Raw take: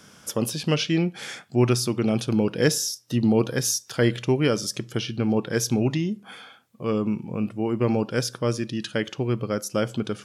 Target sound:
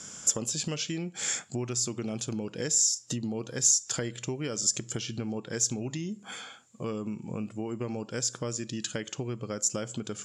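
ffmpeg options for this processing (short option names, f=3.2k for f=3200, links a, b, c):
-af "acompressor=threshold=-32dB:ratio=5,lowpass=f=7.2k:t=q:w=15"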